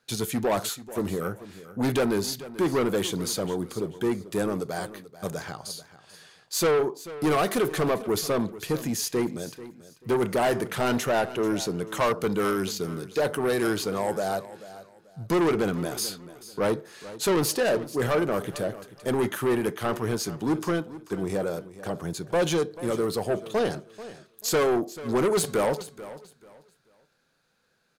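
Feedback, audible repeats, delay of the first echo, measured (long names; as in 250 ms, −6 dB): 26%, 2, 438 ms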